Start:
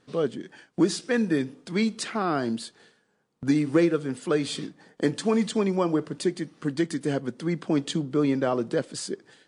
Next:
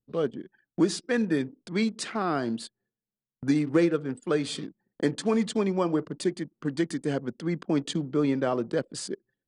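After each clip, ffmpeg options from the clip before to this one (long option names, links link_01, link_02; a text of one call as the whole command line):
ffmpeg -i in.wav -af "aeval=exprs='0.335*(cos(1*acos(clip(val(0)/0.335,-1,1)))-cos(1*PI/2))+0.00237*(cos(7*acos(clip(val(0)/0.335,-1,1)))-cos(7*PI/2))':channel_layout=same,anlmdn=0.398,volume=-1.5dB" out.wav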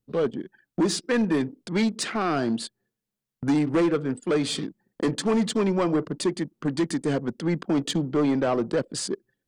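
ffmpeg -i in.wav -af "asoftclip=type=tanh:threshold=-23dB,volume=6dB" out.wav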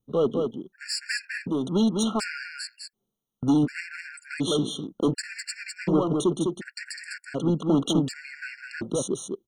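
ffmpeg -i in.wav -filter_complex "[0:a]asplit=2[link_01][link_02];[link_02]aecho=0:1:204:0.596[link_03];[link_01][link_03]amix=inputs=2:normalize=0,afftfilt=real='re*gt(sin(2*PI*0.68*pts/sr)*(1-2*mod(floor(b*sr/1024/1400),2)),0)':imag='im*gt(sin(2*PI*0.68*pts/sr)*(1-2*mod(floor(b*sr/1024/1400),2)),0)':win_size=1024:overlap=0.75,volume=1.5dB" out.wav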